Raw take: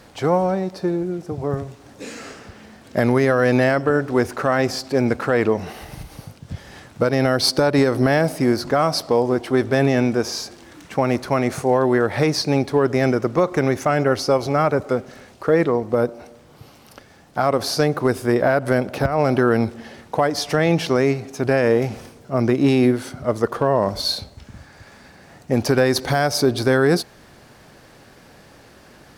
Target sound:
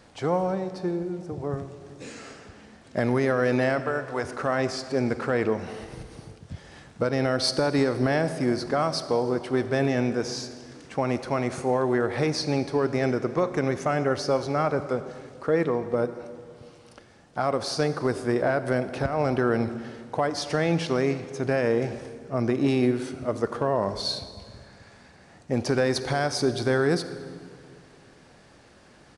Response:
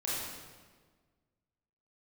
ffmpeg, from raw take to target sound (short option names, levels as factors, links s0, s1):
-filter_complex "[0:a]asettb=1/sr,asplit=3[s0][s1][s2];[s0]atrim=end=3.804[s3];[s1]atrim=start=3.8:end=4.24,asetpts=PTS-STARTPTS,afade=t=in:d=0.004:c=qsin,afade=t=out:st=0.436:d=0.004:c=qsin,lowshelf=f=460:t=q:w=1.5:g=-8[s4];[s2]atrim=start=4.236[s5];[s3][s4]acrossfade=d=0.004:c1=hsin:c2=qsin[s6];[s6][s5]acrossfade=d=0.004:c1=qsin:c2=hsin,asplit=2[s7][s8];[1:a]atrim=start_sample=2205,asetrate=28224,aresample=44100[s9];[s8][s9]afir=irnorm=-1:irlink=0,volume=0.112[s10];[s7][s10]amix=inputs=2:normalize=0,aresample=22050,aresample=44100,volume=0.422"